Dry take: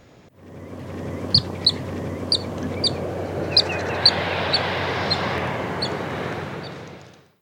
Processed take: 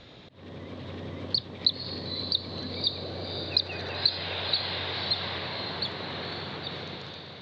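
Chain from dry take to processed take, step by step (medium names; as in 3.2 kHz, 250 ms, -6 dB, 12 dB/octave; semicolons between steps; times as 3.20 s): compression 3:1, threshold -37 dBFS, peak gain reduction 20 dB; resonant low-pass 3.8 kHz, resonance Q 5.6; echo that smears into a reverb 532 ms, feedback 53%, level -7.5 dB; trim -1.5 dB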